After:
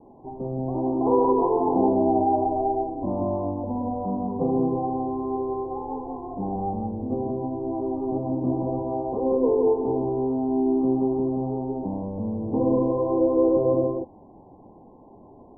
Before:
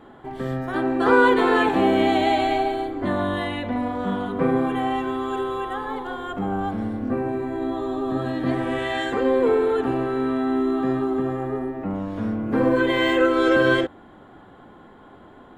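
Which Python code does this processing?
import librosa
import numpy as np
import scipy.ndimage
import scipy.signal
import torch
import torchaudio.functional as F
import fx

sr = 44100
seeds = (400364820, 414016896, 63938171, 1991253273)

y = scipy.signal.sosfilt(scipy.signal.butter(16, 1000.0, 'lowpass', fs=sr, output='sos'), x)
y = y + 10.0 ** (-3.5 / 20.0) * np.pad(y, (int(176 * sr / 1000.0), 0))[:len(y)]
y = y * 10.0 ** (-3.0 / 20.0)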